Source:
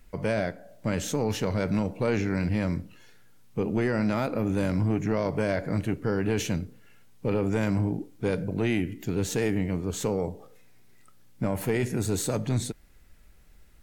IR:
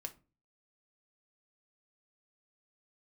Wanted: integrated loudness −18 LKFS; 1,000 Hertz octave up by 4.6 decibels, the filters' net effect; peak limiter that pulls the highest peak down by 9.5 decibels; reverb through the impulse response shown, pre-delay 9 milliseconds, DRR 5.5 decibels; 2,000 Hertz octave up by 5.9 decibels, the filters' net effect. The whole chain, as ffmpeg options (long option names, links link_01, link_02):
-filter_complex "[0:a]equalizer=frequency=1000:width_type=o:gain=4.5,equalizer=frequency=2000:width_type=o:gain=6,alimiter=limit=-19.5dB:level=0:latency=1,asplit=2[link_01][link_02];[1:a]atrim=start_sample=2205,adelay=9[link_03];[link_02][link_03]afir=irnorm=-1:irlink=0,volume=-2.5dB[link_04];[link_01][link_04]amix=inputs=2:normalize=0,volume=11.5dB"